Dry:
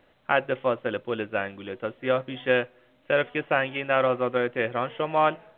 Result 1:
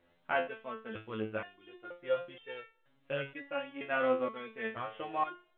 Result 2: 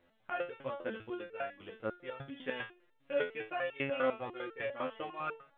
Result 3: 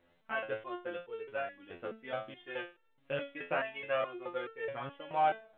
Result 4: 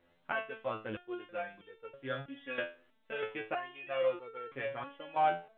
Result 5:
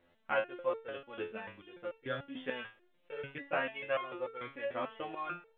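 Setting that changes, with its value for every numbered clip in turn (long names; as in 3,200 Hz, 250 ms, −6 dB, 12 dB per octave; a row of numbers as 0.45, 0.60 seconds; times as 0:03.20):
step-sequenced resonator, speed: 2.1, 10, 4.7, 3.1, 6.8 Hertz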